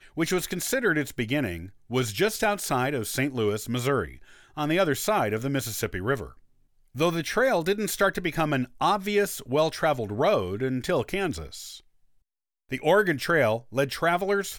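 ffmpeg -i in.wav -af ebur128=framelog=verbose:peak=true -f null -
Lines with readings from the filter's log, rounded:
Integrated loudness:
  I:         -26.0 LUFS
  Threshold: -36.3 LUFS
Loudness range:
  LRA:         2.4 LU
  Threshold: -46.8 LUFS
  LRA low:   -27.8 LUFS
  LRA high:  -25.4 LUFS
True peak:
  Peak:      -10.3 dBFS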